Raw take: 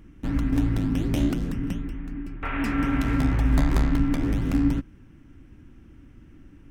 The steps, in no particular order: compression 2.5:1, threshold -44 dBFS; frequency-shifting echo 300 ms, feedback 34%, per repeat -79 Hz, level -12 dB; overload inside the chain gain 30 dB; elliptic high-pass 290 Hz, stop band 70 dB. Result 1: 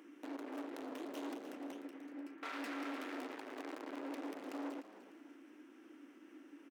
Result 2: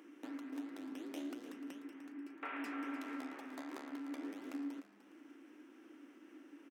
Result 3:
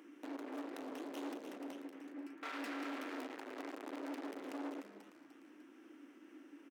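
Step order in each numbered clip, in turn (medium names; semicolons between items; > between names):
overload inside the chain > compression > frequency-shifting echo > elliptic high-pass; compression > frequency-shifting echo > elliptic high-pass > overload inside the chain; frequency-shifting echo > overload inside the chain > compression > elliptic high-pass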